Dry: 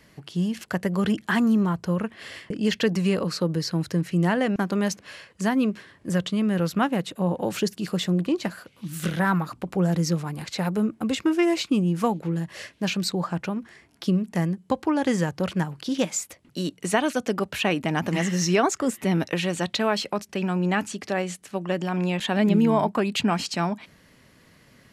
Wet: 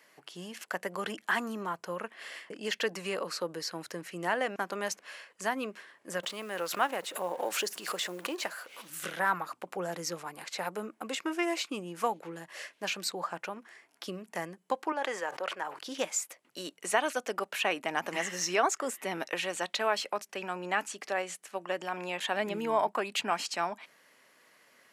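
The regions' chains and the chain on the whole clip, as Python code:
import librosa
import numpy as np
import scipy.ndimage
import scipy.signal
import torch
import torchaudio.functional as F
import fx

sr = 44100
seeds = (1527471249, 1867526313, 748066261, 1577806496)

y = fx.chain(x, sr, fx.law_mismatch(coded='mu'),
    fx.bass_treble(bass_db=-9, treble_db=1),
    fx.pre_swell(db_per_s=98.0), at=(6.23, 8.9))
y = fx.chain(y, sr, fx.highpass(hz=430.0, slope=12),
    fx.high_shelf(hz=4200.0, db=-11.5),
    fx.sustainer(db_per_s=75.0), at=(14.92, 15.79))
y = scipy.signal.sosfilt(scipy.signal.butter(2, 570.0, 'highpass', fs=sr, output='sos'), y)
y = fx.peak_eq(y, sr, hz=4100.0, db=-4.0, octaves=1.0)
y = F.gain(torch.from_numpy(y), -2.5).numpy()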